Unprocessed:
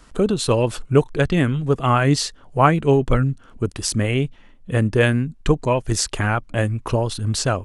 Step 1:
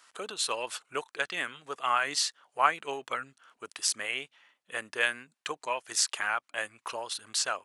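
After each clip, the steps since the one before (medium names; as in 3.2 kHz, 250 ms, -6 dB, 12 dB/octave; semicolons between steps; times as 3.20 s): high-pass 1.1 kHz 12 dB/octave; trim -4 dB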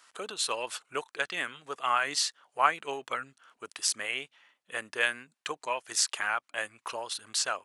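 no audible change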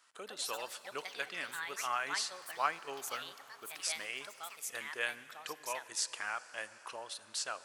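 short-mantissa float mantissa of 6-bit; plate-style reverb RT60 4.9 s, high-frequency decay 0.9×, DRR 14.5 dB; ever faster or slower copies 156 ms, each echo +5 st, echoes 2, each echo -6 dB; trim -8.5 dB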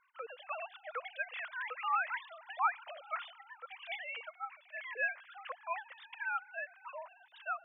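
formants replaced by sine waves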